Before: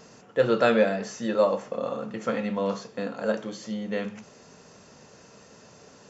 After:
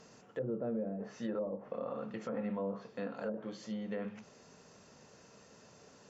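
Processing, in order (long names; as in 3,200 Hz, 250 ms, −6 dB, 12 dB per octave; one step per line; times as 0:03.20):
treble cut that deepens with the level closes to 380 Hz, closed at −20.5 dBFS
brickwall limiter −21 dBFS, peak gain reduction 7.5 dB
level −7.5 dB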